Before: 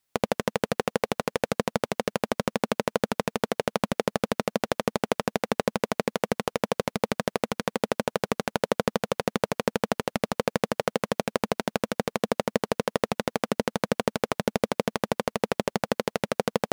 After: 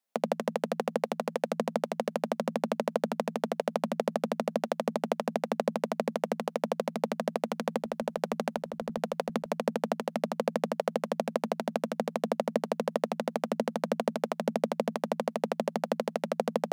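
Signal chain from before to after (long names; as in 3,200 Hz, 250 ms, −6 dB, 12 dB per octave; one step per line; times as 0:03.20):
Chebyshev high-pass with heavy ripple 160 Hz, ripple 9 dB
0:07.49–0:09.58: compressor whose output falls as the input rises −29 dBFS, ratio −0.5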